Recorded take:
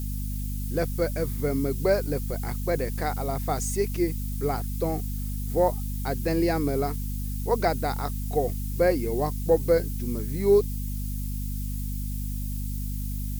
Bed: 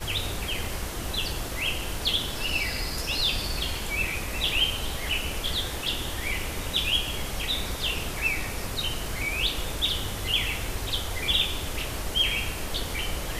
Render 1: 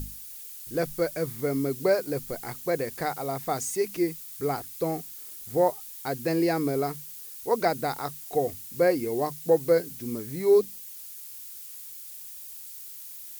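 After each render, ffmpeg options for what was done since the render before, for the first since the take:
-af "bandreject=f=50:t=h:w=6,bandreject=f=100:t=h:w=6,bandreject=f=150:t=h:w=6,bandreject=f=200:t=h:w=6,bandreject=f=250:t=h:w=6"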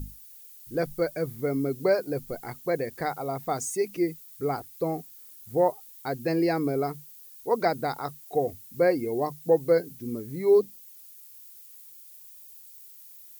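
-af "afftdn=nr=10:nf=-42"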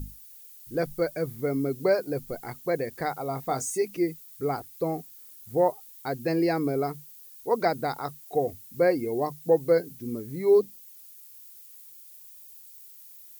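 -filter_complex "[0:a]asettb=1/sr,asplit=3[s0][s1][s2];[s0]atrim=end=3.284[s3];[s1]atrim=start=3.28:end=3.82,asetpts=PTS-STARTPTS,afade=t=in:d=0.004:c=qsin,afade=t=out:st=0.536:d=0.004:c=qsin,asplit=2[s4][s5];[s5]adelay=23,volume=0.355[s6];[s4][s6]amix=inputs=2:normalize=0,atrim=end_sample=23814[s7];[s2]atrim=start=3.816[s8];[s3][s7]acrossfade=d=0.004:c1=hsin:c2=qsin[s9];[s9][s8]acrossfade=d=0.004:c1=qsin:c2=hsin"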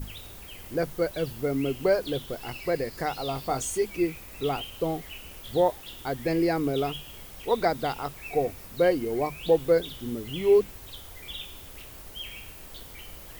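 -filter_complex "[1:a]volume=0.178[s0];[0:a][s0]amix=inputs=2:normalize=0"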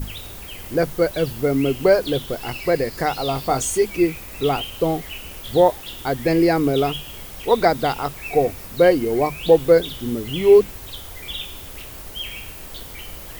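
-af "volume=2.51"

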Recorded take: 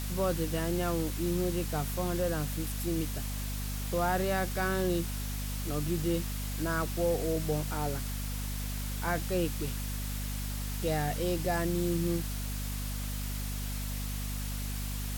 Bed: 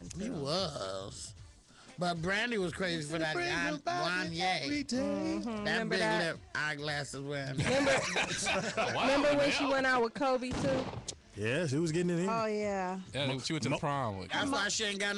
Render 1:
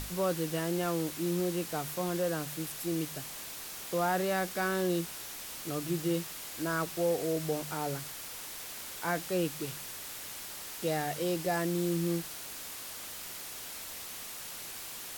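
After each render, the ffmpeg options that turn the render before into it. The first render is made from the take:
-af "bandreject=f=50:t=h:w=6,bandreject=f=100:t=h:w=6,bandreject=f=150:t=h:w=6,bandreject=f=200:t=h:w=6,bandreject=f=250:t=h:w=6"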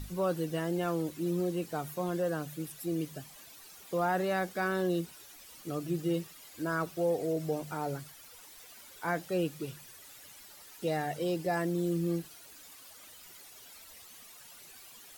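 -af "afftdn=nr=13:nf=-43"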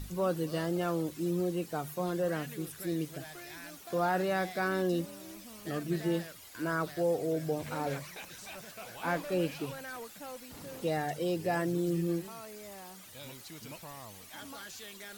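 -filter_complex "[1:a]volume=0.188[s0];[0:a][s0]amix=inputs=2:normalize=0"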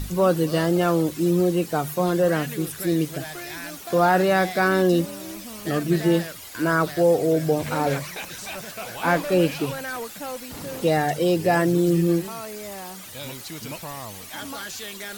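-af "volume=3.76"

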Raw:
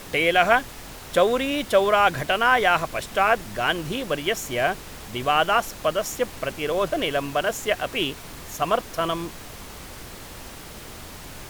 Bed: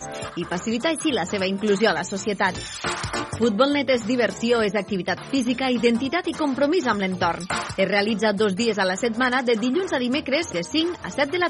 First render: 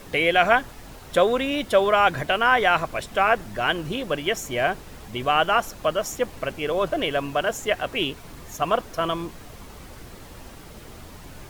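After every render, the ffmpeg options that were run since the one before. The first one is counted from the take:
-af "afftdn=nr=7:nf=-40"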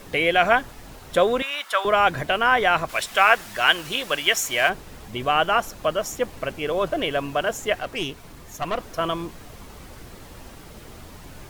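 -filter_complex "[0:a]asettb=1/sr,asplit=3[s0][s1][s2];[s0]atrim=end=1.424[s3];[s1]atrim=start=1.42:end=1.85,asetpts=PTS-STARTPTS,afade=t=in:d=0.004:c=qsin,afade=t=out:st=0.426:d=0.004:c=qsin,highpass=f=1200:t=q:w=2.2[s4];[s2]atrim=start=1.846[s5];[s3][s4]acrossfade=d=0.004:c1=hsin:c2=qsin[s6];[s6][s5]acrossfade=d=0.004:c1=qsin:c2=hsin,asplit=3[s7][s8][s9];[s7]afade=t=out:st=2.88:d=0.02[s10];[s8]tiltshelf=f=690:g=-9,afade=t=in:st=2.88:d=0.02,afade=t=out:st=4.68:d=0.02[s11];[s9]afade=t=in:st=4.68:d=0.02[s12];[s10][s11][s12]amix=inputs=3:normalize=0,asettb=1/sr,asplit=3[s13][s14][s15];[s13]atrim=end=7.794[s16];[s14]atrim=start=7.79:end=8.81,asetpts=PTS-STARTPTS,afade=t=in:d=0.004:c=qsin,afade=t=out:st=1.016:d=0.004:c=qsin,aeval=exprs='(tanh(8.91*val(0)+0.5)-tanh(0.5))/8.91':c=same[s17];[s15]atrim=start=8.806[s18];[s16][s17]acrossfade=d=0.004:c1=hsin:c2=qsin[s19];[s19][s18]acrossfade=d=0.004:c1=qsin:c2=hsin"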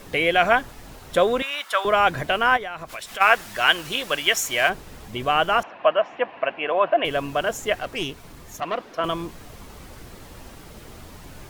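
-filter_complex "[0:a]asplit=3[s0][s1][s2];[s0]afade=t=out:st=2.56:d=0.02[s3];[s1]acompressor=threshold=0.0224:ratio=3:attack=3.2:release=140:knee=1:detection=peak,afade=t=in:st=2.56:d=0.02,afade=t=out:st=3.2:d=0.02[s4];[s2]afade=t=in:st=3.2:d=0.02[s5];[s3][s4][s5]amix=inputs=3:normalize=0,asettb=1/sr,asplit=3[s6][s7][s8];[s6]atrim=end=5.634[s9];[s7]atrim=start=5.63:end=7.05,asetpts=PTS-STARTPTS,afade=t=in:d=0.004:c=qsin,afade=t=out:st=1.416:d=0.004:c=qsin,highpass=320,equalizer=f=410:t=q:w=4:g=-4,equalizer=f=690:t=q:w=4:g=9,equalizer=f=1000:t=q:w=4:g=7,equalizer=f=1700:t=q:w=4:g=5,equalizer=f=2700:t=q:w=4:g=8,lowpass=f=2800:w=0.5412,lowpass=f=2800:w=1.3066[s10];[s8]atrim=start=7.046[s11];[s9][s10]acrossfade=d=0.004:c1=hsin:c2=qsin[s12];[s12][s11]acrossfade=d=0.004:c1=qsin:c2=hsin,asettb=1/sr,asplit=3[s13][s14][s15];[s13]atrim=end=8.604[s16];[s14]atrim=start=8.6:end=9.04,asetpts=PTS-STARTPTS,afade=t=in:d=0.004:c=qsin,afade=t=out:st=0.436:d=0.004:c=qsin,acrossover=split=180 4800:gain=0.0794 1 0.2[s17][s18][s19];[s17][s18][s19]amix=inputs=3:normalize=0[s20];[s15]atrim=start=9.036[s21];[s16][s20]acrossfade=d=0.004:c1=hsin:c2=qsin[s22];[s22][s21]acrossfade=d=0.004:c1=qsin:c2=hsin"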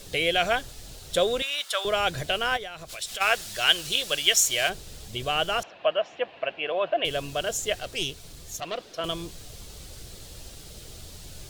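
-af "equalizer=f=250:t=o:w=1:g=-9,equalizer=f=1000:t=o:w=1:g=-11,equalizer=f=2000:t=o:w=1:g=-6,equalizer=f=4000:t=o:w=1:g=6,equalizer=f=8000:t=o:w=1:g=5"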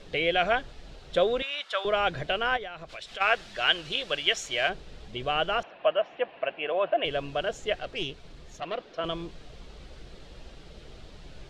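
-af "lowpass=2700,equalizer=f=96:w=3:g=-13"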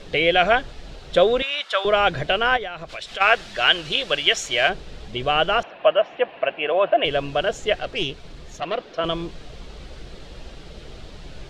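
-af "volume=2.37,alimiter=limit=0.708:level=0:latency=1"

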